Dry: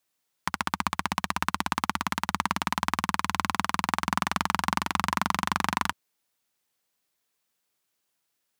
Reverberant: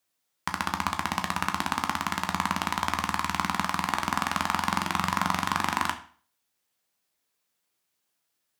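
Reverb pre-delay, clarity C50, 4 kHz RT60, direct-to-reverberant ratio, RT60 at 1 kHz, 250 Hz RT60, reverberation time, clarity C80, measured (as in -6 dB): 11 ms, 12.0 dB, 0.40 s, 5.5 dB, 0.45 s, 0.45 s, 0.45 s, 16.0 dB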